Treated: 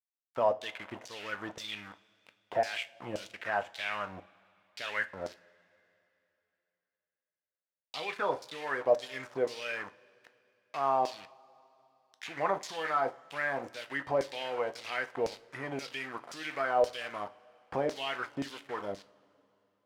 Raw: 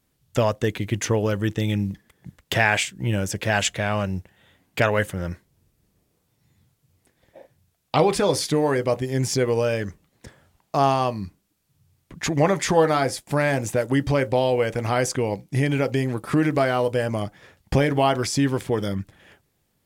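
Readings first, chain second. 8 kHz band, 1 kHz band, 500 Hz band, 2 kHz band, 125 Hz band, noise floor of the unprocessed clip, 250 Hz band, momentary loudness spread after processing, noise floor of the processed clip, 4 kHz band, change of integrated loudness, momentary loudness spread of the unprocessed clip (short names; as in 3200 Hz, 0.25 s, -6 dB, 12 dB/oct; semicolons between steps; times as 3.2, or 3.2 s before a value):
-20.5 dB, -8.5 dB, -11.0 dB, -9.0 dB, -27.5 dB, -71 dBFS, -20.0 dB, 13 LU, under -85 dBFS, -10.5 dB, -11.5 dB, 10 LU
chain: de-esser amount 90%; high shelf 6800 Hz +7.5 dB; sample gate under -30 dBFS; LFO band-pass saw down 1.9 Hz 560–5600 Hz; two-slope reverb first 0.32 s, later 3.1 s, from -21 dB, DRR 10.5 dB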